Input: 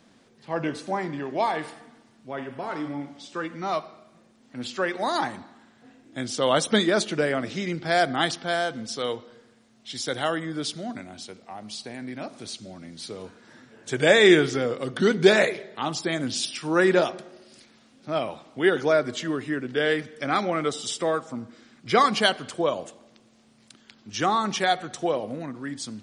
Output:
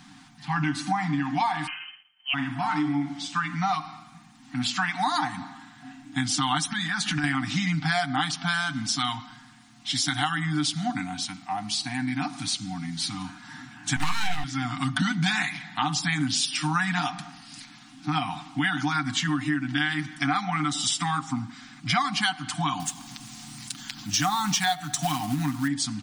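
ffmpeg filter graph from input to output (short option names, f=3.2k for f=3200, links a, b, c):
-filter_complex "[0:a]asettb=1/sr,asplit=3[a][b][c];[a]atrim=end=1.674[d];[b]atrim=start=1.67:end=2.34,asetpts=PTS-STARTPTS,afade=t=in:d=0.004:c=qsin,afade=t=out:st=0.666:d=0.004:c=qsin,agate=range=-33dB:threshold=-48dB:ratio=3:release=100:detection=peak,lowpass=f=2.8k:t=q:w=0.5098,lowpass=f=2.8k:t=q:w=0.6013,lowpass=f=2.8k:t=q:w=0.9,lowpass=f=2.8k:t=q:w=2.563,afreqshift=-3300[e];[c]atrim=start=2.336[f];[d][e]acrossfade=d=0.004:c1=hsin:c2=qsin[g];[g][f]acrossfade=d=0.004:c1=qsin:c2=hsin,asettb=1/sr,asplit=3[h][i][j];[h]atrim=end=6.654[k];[i]atrim=start=6.65:end=7.24,asetpts=PTS-STARTPTS,afade=t=in:d=0.004:c=qsin,afade=t=out:st=0.586:d=0.004:c=qsin,equalizer=f=1.7k:t=o:w=0.28:g=7.5,acompressor=threshold=-29dB:ratio=6:attack=3.2:release=140:knee=1:detection=peak[l];[j]atrim=start=7.236[m];[k][l]acrossfade=d=0.004:c1=hsin:c2=qsin[n];[n][m]acrossfade=d=0.004:c1=qsin:c2=hsin,asettb=1/sr,asplit=3[o][p][q];[o]atrim=end=13.964[r];[p]atrim=start=13.96:end=14.44,asetpts=PTS-STARTPTS,afade=t=in:d=0.004:c=qsin,afade=t=out:st=0.476:d=0.004:c=qsin,aeval=exprs='abs(val(0))':c=same,asplit=2[s][t];[t]adelay=18,volume=-12dB[u];[s][u]amix=inputs=2:normalize=0,atrim=end_sample=21168[v];[q]atrim=start=14.436[w];[r][v]acrossfade=d=0.004:c1=hsin:c2=qsin[x];[x][w]acrossfade=d=0.004:c1=qsin:c2=hsin,asettb=1/sr,asplit=3[y][z][aa];[y]atrim=end=22.804[ab];[z]atrim=start=22.8:end=25.68,asetpts=PTS-STARTPTS,afade=t=in:d=0.004:c=qsin,afade=t=out:st=2.876:d=0.004:c=qsin,bass=f=250:g=3,treble=f=4k:g=9,acompressor=mode=upward:threshold=-40dB:ratio=2.5:attack=3.2:release=140:knee=2.83:detection=peak,acrusher=bits=4:mode=log:mix=0:aa=0.000001[ac];[aa]atrim=start=25.676[ad];[ab][ac]acrossfade=d=0.004:c1=hsin:c2=qsin[ae];[ae][ad]acrossfade=d=0.004:c1=qsin:c2=hsin,afftfilt=real='re*(1-between(b*sr/4096,310,690))':imag='im*(1-between(b*sr/4096,310,690))':win_size=4096:overlap=0.75,aecho=1:1:6.6:0.51,acompressor=threshold=-31dB:ratio=6,volume=8.5dB"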